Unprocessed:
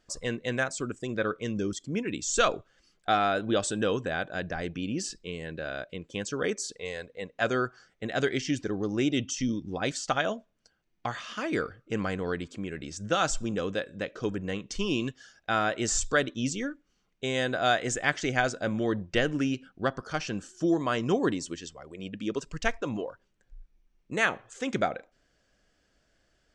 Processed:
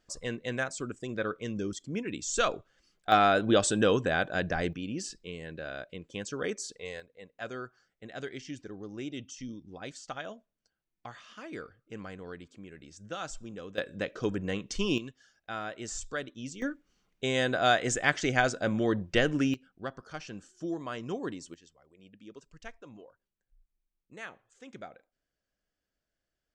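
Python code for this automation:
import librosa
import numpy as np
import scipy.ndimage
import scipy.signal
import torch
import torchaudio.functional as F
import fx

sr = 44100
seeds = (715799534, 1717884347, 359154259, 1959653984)

y = fx.gain(x, sr, db=fx.steps((0.0, -3.5), (3.12, 3.0), (4.73, -4.0), (7.0, -12.0), (13.78, 0.0), (14.98, -10.5), (16.62, 0.5), (19.54, -9.5), (21.54, -17.5)))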